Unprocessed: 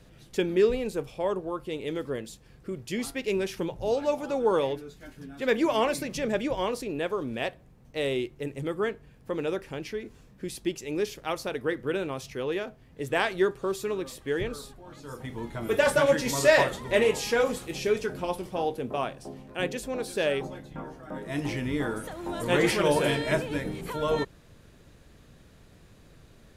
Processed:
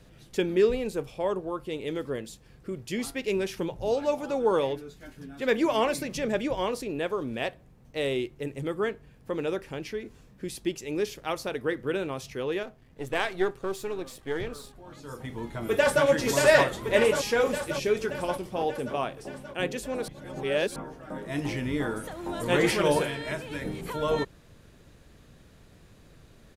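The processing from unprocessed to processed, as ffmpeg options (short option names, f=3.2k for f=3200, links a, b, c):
-filter_complex "[0:a]asettb=1/sr,asplit=3[a][b][c];[a]atrim=end=12.634[d];[b]atrim=start=12.63:end=14.75,asetpts=PTS-STARTPTS,afade=t=in:d=0.004:c=qsin,afade=t=out:st=2.116:d=0.004:c=qsin,aeval=exprs='if(lt(val(0),0),0.447*val(0),val(0))':c=same[e];[c]atrim=start=14.746[f];[d][e]acrossfade=d=0.004:c1=hsin:c2=qsin[g];[g][f]acrossfade=d=0.004:c1=qsin:c2=hsin,asplit=2[h][i];[i]afade=t=in:st=15.6:d=0.01,afade=t=out:st=16.05:d=0.01,aecho=0:1:580|1160|1740|2320|2900|3480|4060|4640|5220|5800:0.707946|0.460165|0.299107|0.19442|0.126373|0.0821423|0.0533925|0.0347051|0.0225583|0.0146629[j];[h][j]amix=inputs=2:normalize=0,asettb=1/sr,asplit=3[k][l][m];[k]atrim=end=23.034[n];[l]atrim=start=23.03:end=23.62,asetpts=PTS-STARTPTS,afade=t=in:d=0.004:c=qsin,afade=t=out:st=0.586:d=0.004:c=qsin,acrossover=split=150|950|2500[o][p][q][r];[o]acompressor=threshold=-44dB:ratio=3[s];[p]acompressor=threshold=-37dB:ratio=3[t];[q]acompressor=threshold=-37dB:ratio=3[u];[r]acompressor=threshold=-44dB:ratio=3[v];[s][t][u][v]amix=inputs=4:normalize=0[w];[m]atrim=start=23.616[x];[n][w]acrossfade=d=0.004:c1=hsin:c2=qsin[y];[y][x]acrossfade=d=0.004:c1=qsin:c2=hsin,asplit=3[z][aa][ab];[z]atrim=end=20.082[ac];[aa]atrim=start=20.078:end=20.762,asetpts=PTS-STARTPTS,areverse[ad];[ab]atrim=start=20.758[ae];[ac][ad]acrossfade=d=0.004:c1=hsin:c2=hsin[af];[af][ae]acrossfade=d=0.004:c1=hsin:c2=hsin"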